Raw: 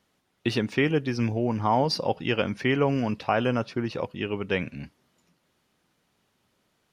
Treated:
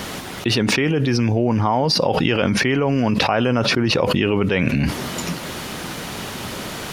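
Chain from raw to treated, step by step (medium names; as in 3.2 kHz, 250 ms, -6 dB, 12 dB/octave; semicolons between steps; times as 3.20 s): level flattener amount 100%; trim +1.5 dB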